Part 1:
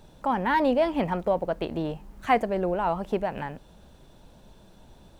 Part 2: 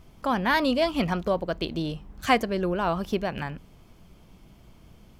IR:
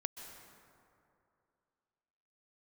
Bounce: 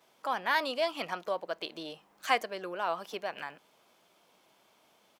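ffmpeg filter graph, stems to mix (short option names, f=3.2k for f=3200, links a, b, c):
-filter_complex "[0:a]acompressor=threshold=-32dB:ratio=6,volume=-10.5dB[a];[1:a]adelay=5.9,volume=-4.5dB[b];[a][b]amix=inputs=2:normalize=0,highpass=570"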